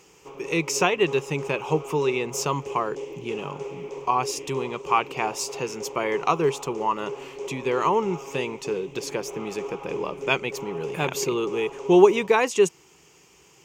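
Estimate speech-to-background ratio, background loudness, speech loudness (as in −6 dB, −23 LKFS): 12.0 dB, −37.0 LKFS, −25.0 LKFS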